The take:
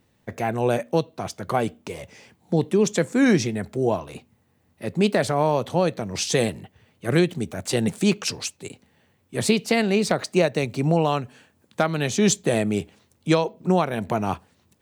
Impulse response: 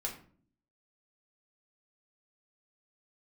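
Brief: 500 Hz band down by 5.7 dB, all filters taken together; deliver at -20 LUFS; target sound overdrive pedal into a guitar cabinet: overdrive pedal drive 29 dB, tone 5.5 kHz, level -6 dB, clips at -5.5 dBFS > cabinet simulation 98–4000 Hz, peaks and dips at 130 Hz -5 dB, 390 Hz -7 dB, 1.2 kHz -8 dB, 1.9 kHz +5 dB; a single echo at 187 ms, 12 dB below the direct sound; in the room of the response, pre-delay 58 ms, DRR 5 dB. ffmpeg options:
-filter_complex "[0:a]equalizer=f=500:t=o:g=-4,aecho=1:1:187:0.251,asplit=2[s0][s1];[1:a]atrim=start_sample=2205,adelay=58[s2];[s1][s2]afir=irnorm=-1:irlink=0,volume=0.473[s3];[s0][s3]amix=inputs=2:normalize=0,asplit=2[s4][s5];[s5]highpass=f=720:p=1,volume=28.2,asoftclip=type=tanh:threshold=0.531[s6];[s4][s6]amix=inputs=2:normalize=0,lowpass=f=5500:p=1,volume=0.501,highpass=98,equalizer=f=130:t=q:w=4:g=-5,equalizer=f=390:t=q:w=4:g=-7,equalizer=f=1200:t=q:w=4:g=-8,equalizer=f=1900:t=q:w=4:g=5,lowpass=f=4000:w=0.5412,lowpass=f=4000:w=1.3066,volume=0.596"

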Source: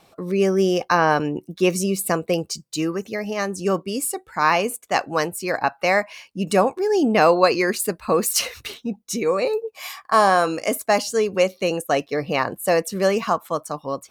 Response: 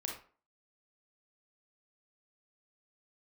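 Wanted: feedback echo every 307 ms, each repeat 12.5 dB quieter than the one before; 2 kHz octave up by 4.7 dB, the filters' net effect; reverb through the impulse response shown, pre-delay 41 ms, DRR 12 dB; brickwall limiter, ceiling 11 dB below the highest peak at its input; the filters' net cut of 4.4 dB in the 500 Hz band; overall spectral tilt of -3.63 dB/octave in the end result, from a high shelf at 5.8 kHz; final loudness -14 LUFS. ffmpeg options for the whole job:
-filter_complex "[0:a]equalizer=f=500:t=o:g=-6,equalizer=f=2000:t=o:g=5.5,highshelf=f=5800:g=6.5,alimiter=limit=0.251:level=0:latency=1,aecho=1:1:307|614|921:0.237|0.0569|0.0137,asplit=2[s0][s1];[1:a]atrim=start_sample=2205,adelay=41[s2];[s1][s2]afir=irnorm=-1:irlink=0,volume=0.237[s3];[s0][s3]amix=inputs=2:normalize=0,volume=2.99"

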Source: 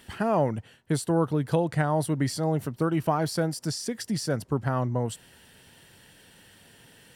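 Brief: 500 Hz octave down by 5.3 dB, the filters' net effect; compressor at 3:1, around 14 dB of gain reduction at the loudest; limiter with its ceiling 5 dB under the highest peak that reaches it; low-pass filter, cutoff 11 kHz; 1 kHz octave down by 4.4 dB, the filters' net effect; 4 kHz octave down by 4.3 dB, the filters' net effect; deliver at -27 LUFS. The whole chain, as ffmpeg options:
-af "lowpass=11000,equalizer=f=500:t=o:g=-5.5,equalizer=f=1000:t=o:g=-3.5,equalizer=f=4000:t=o:g=-5.5,acompressor=threshold=0.00794:ratio=3,volume=7.08,alimiter=limit=0.141:level=0:latency=1"

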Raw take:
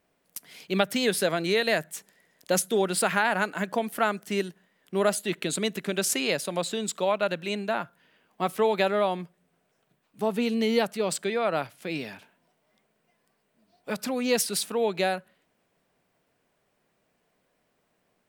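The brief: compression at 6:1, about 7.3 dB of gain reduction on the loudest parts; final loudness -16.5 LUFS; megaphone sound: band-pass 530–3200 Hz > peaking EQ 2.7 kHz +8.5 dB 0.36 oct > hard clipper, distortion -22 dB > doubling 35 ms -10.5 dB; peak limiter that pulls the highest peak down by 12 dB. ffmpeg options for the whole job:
-filter_complex "[0:a]acompressor=threshold=0.0501:ratio=6,alimiter=level_in=1.06:limit=0.0631:level=0:latency=1,volume=0.944,highpass=530,lowpass=3200,equalizer=f=2700:t=o:w=0.36:g=8.5,asoftclip=type=hard:threshold=0.0355,asplit=2[s0][s1];[s1]adelay=35,volume=0.299[s2];[s0][s2]amix=inputs=2:normalize=0,volume=11.9"

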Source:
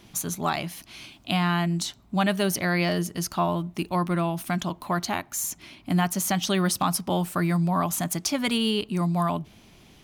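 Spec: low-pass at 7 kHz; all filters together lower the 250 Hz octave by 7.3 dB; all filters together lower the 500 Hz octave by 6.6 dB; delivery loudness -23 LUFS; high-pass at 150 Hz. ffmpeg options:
-af "highpass=150,lowpass=7000,equalizer=f=250:t=o:g=-8.5,equalizer=f=500:t=o:g=-7,volume=2.24"

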